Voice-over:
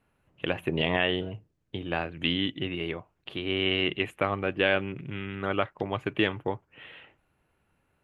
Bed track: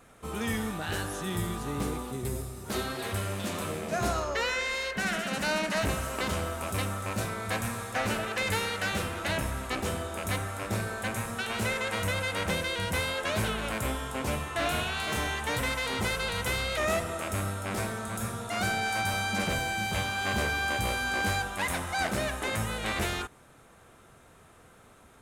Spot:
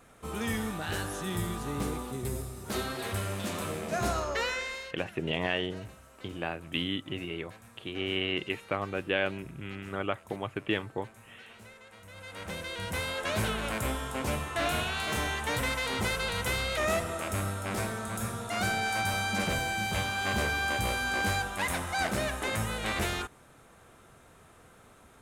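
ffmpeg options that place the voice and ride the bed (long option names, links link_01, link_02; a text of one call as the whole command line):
ffmpeg -i stem1.wav -i stem2.wav -filter_complex "[0:a]adelay=4500,volume=-4.5dB[link_01];[1:a]volume=20dB,afade=type=out:start_time=4.4:duration=0.65:silence=0.0944061,afade=type=in:start_time=12.08:duration=1.36:silence=0.0891251[link_02];[link_01][link_02]amix=inputs=2:normalize=0" out.wav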